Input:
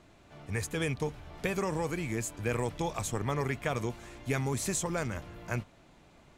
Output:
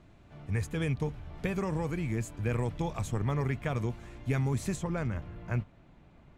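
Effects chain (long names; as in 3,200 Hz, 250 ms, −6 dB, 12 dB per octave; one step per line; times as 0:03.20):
bass and treble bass +8 dB, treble −6 dB, from 0:04.75 treble −13 dB
level −3 dB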